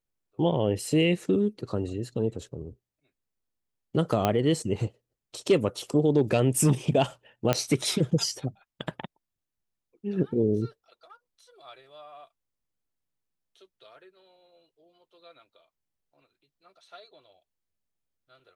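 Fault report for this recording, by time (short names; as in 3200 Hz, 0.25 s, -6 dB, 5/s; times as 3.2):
4.25 pop -10 dBFS
7.53 pop -8 dBFS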